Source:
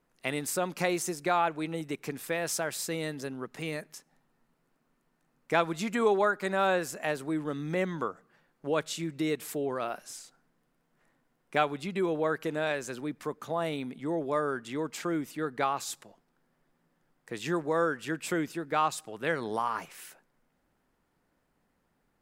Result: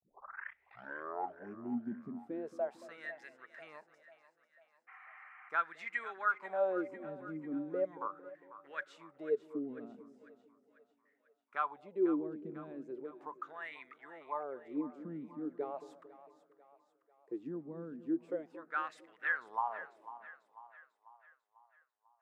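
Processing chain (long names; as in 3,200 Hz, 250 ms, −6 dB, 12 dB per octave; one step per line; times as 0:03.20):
turntable start at the beginning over 2.27 s
noise gate with hold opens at −56 dBFS
LFO wah 0.38 Hz 210–2,000 Hz, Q 8.2
healed spectral selection 0:04.91–0:05.46, 700–3,200 Hz after
echo with a time of its own for lows and highs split 590 Hz, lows 226 ms, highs 495 ms, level −14 dB
level +3.5 dB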